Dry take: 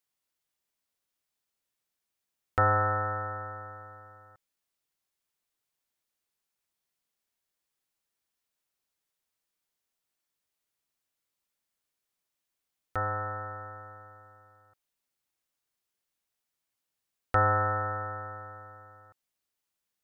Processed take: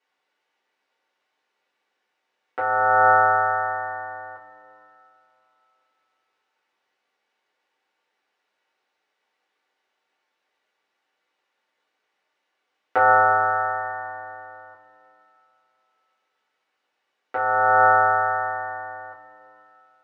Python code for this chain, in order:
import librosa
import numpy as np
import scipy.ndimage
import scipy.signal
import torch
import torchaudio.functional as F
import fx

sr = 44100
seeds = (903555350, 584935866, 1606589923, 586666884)

y = fx.over_compress(x, sr, threshold_db=-31.0, ratio=-1.0)
y = fx.bandpass_edges(y, sr, low_hz=400.0, high_hz=2300.0)
y = fx.rev_double_slope(y, sr, seeds[0], early_s=0.2, late_s=2.7, knee_db=-19, drr_db=-7.5)
y = F.gain(torch.from_numpy(y), 7.5).numpy()